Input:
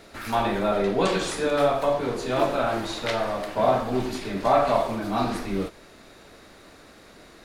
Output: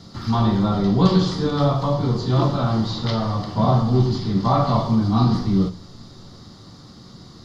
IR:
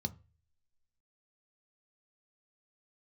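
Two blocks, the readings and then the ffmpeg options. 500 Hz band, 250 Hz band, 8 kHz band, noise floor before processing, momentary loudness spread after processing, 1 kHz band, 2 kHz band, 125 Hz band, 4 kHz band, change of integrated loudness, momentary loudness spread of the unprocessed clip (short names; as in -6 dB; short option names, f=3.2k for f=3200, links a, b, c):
-2.0 dB, +9.5 dB, n/a, -50 dBFS, 6 LU, +0.5 dB, -7.0 dB, +17.0 dB, +3.5 dB, +5.0 dB, 6 LU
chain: -filter_complex "[0:a]equalizer=f=125:t=o:w=0.33:g=6,equalizer=f=1.6k:t=o:w=0.33:g=-8,equalizer=f=5k:t=o:w=0.33:g=12,acrossover=split=4900[a][b];[b]acompressor=threshold=-51dB:ratio=4:attack=1:release=60[c];[a][c]amix=inputs=2:normalize=0,asplit=2[d][e];[1:a]atrim=start_sample=2205[f];[e][f]afir=irnorm=-1:irlink=0,volume=1.5dB[g];[d][g]amix=inputs=2:normalize=0"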